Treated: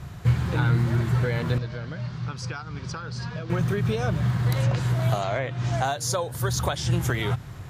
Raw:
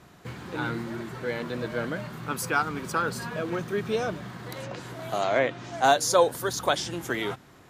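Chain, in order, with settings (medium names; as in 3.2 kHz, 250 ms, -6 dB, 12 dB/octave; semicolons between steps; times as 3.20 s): compression 8:1, threshold -30 dBFS, peak gain reduction 15 dB; 1.58–3.50 s: four-pole ladder low-pass 6 kHz, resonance 50%; resonant low shelf 170 Hz +13.5 dB, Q 1.5; trim +6.5 dB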